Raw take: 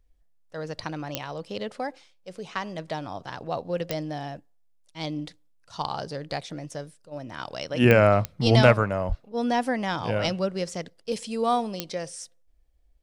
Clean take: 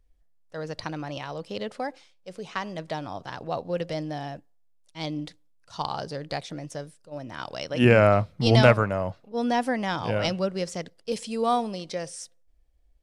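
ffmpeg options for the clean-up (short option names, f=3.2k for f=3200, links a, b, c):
-filter_complex "[0:a]adeclick=t=4,asplit=3[a][b][c];[a]afade=t=out:st=9.08:d=0.02[d];[b]highpass=f=140:w=0.5412,highpass=f=140:w=1.3066,afade=t=in:st=9.08:d=0.02,afade=t=out:st=9.2:d=0.02[e];[c]afade=t=in:st=9.2:d=0.02[f];[d][e][f]amix=inputs=3:normalize=0"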